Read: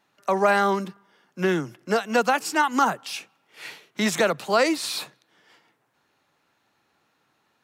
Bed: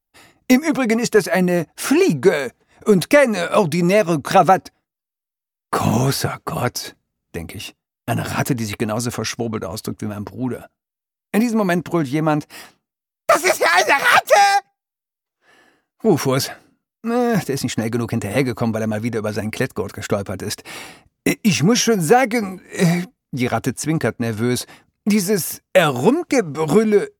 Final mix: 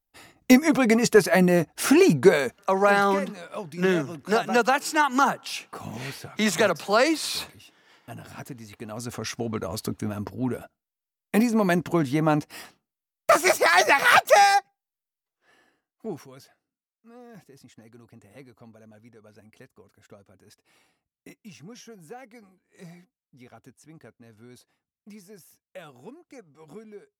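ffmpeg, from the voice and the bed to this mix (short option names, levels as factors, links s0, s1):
-filter_complex "[0:a]adelay=2400,volume=1[s0];[1:a]volume=4.73,afade=t=out:st=2.52:d=0.21:silence=0.133352,afade=t=in:st=8.77:d=0.97:silence=0.16788,afade=t=out:st=15.01:d=1.26:silence=0.0530884[s1];[s0][s1]amix=inputs=2:normalize=0"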